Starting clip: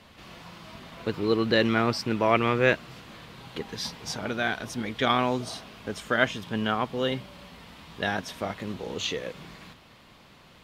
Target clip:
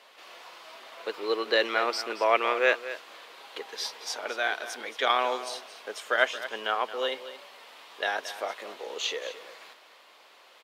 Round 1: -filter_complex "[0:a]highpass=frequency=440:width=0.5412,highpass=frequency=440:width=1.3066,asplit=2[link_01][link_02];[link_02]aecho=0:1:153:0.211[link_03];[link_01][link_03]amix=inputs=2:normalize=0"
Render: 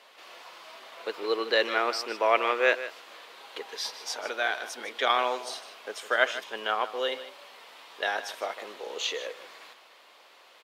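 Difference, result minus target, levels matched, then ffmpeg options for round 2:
echo 71 ms early
-filter_complex "[0:a]highpass=frequency=440:width=0.5412,highpass=frequency=440:width=1.3066,asplit=2[link_01][link_02];[link_02]aecho=0:1:224:0.211[link_03];[link_01][link_03]amix=inputs=2:normalize=0"

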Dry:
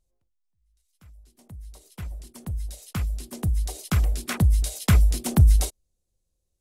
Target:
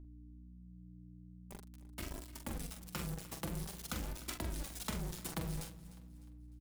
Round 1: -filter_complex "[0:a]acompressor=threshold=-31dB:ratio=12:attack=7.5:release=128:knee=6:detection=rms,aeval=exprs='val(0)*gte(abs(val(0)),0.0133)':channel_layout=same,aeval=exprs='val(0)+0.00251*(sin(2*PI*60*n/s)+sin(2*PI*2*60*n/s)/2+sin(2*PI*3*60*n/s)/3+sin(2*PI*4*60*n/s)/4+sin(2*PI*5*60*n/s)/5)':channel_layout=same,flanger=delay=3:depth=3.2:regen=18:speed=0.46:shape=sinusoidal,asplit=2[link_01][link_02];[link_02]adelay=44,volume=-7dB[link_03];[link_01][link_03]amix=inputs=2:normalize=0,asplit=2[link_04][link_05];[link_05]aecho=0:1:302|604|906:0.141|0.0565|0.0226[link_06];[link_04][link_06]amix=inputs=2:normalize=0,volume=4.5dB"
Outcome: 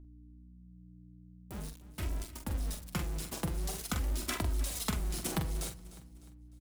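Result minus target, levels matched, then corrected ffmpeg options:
downward compressor: peak gain reduction −6.5 dB
-filter_complex "[0:a]acompressor=threshold=-38dB:ratio=12:attack=7.5:release=128:knee=6:detection=rms,aeval=exprs='val(0)*gte(abs(val(0)),0.0133)':channel_layout=same,aeval=exprs='val(0)+0.00251*(sin(2*PI*60*n/s)+sin(2*PI*2*60*n/s)/2+sin(2*PI*3*60*n/s)/3+sin(2*PI*4*60*n/s)/4+sin(2*PI*5*60*n/s)/5)':channel_layout=same,flanger=delay=3:depth=3.2:regen=18:speed=0.46:shape=sinusoidal,asplit=2[link_01][link_02];[link_02]adelay=44,volume=-7dB[link_03];[link_01][link_03]amix=inputs=2:normalize=0,asplit=2[link_04][link_05];[link_05]aecho=0:1:302|604|906:0.141|0.0565|0.0226[link_06];[link_04][link_06]amix=inputs=2:normalize=0,volume=4.5dB"

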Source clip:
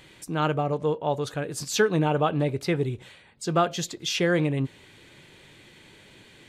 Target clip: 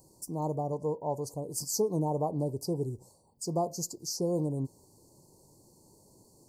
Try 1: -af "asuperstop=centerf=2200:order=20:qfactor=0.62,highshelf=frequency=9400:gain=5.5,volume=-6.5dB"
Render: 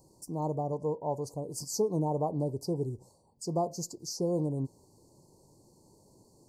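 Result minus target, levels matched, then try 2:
8,000 Hz band −3.5 dB
-af "asuperstop=centerf=2200:order=20:qfactor=0.62,highshelf=frequency=9400:gain=16.5,volume=-6.5dB"

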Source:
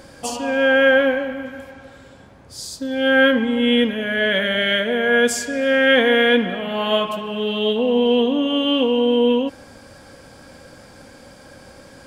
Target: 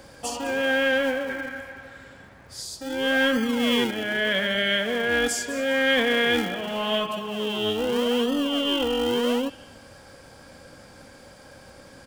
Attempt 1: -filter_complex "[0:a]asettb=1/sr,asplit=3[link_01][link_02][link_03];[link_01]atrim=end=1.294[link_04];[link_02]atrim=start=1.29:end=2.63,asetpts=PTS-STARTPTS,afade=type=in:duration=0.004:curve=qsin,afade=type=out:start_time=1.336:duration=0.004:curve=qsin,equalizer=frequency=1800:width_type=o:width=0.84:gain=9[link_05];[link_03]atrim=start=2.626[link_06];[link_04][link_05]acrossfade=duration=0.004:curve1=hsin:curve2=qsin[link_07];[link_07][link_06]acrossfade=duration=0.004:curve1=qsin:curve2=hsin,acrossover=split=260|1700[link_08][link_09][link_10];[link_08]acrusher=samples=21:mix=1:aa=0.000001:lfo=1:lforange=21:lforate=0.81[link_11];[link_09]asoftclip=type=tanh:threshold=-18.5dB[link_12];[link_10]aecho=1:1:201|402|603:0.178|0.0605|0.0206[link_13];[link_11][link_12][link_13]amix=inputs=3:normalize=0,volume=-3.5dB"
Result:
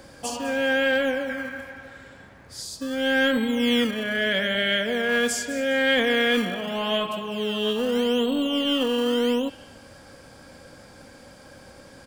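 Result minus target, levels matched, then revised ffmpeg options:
sample-and-hold swept by an LFO: distortion −12 dB
-filter_complex "[0:a]asettb=1/sr,asplit=3[link_01][link_02][link_03];[link_01]atrim=end=1.294[link_04];[link_02]atrim=start=1.29:end=2.63,asetpts=PTS-STARTPTS,afade=type=in:duration=0.004:curve=qsin,afade=type=out:start_time=1.336:duration=0.004:curve=qsin,equalizer=frequency=1800:width_type=o:width=0.84:gain=9[link_05];[link_03]atrim=start=2.626[link_06];[link_04][link_05]acrossfade=duration=0.004:curve1=hsin:curve2=qsin[link_07];[link_07][link_06]acrossfade=duration=0.004:curve1=qsin:curve2=hsin,acrossover=split=260|1700[link_08][link_09][link_10];[link_08]acrusher=samples=56:mix=1:aa=0.000001:lfo=1:lforange=56:lforate=0.81[link_11];[link_09]asoftclip=type=tanh:threshold=-18.5dB[link_12];[link_10]aecho=1:1:201|402|603:0.178|0.0605|0.0206[link_13];[link_11][link_12][link_13]amix=inputs=3:normalize=0,volume=-3.5dB"

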